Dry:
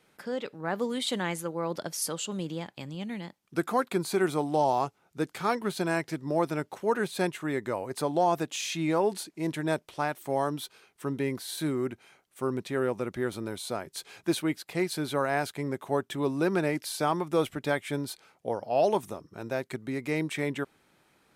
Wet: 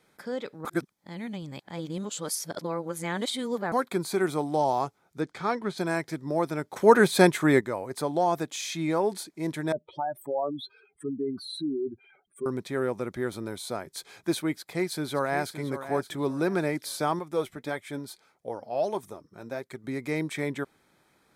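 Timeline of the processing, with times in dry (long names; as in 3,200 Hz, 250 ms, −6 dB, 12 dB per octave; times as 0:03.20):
0:00.65–0:03.72: reverse
0:05.20–0:05.78: high-frequency loss of the air 73 metres
0:06.76–0:07.61: clip gain +10 dB
0:09.72–0:12.46: expanding power law on the bin magnitudes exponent 3.4
0:14.54–0:15.57: delay throw 570 ms, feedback 30%, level −11 dB
0:17.19–0:19.84: flanger 1.6 Hz, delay 1.4 ms, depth 4.4 ms, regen +63%
whole clip: notch filter 2,800 Hz, Q 5.9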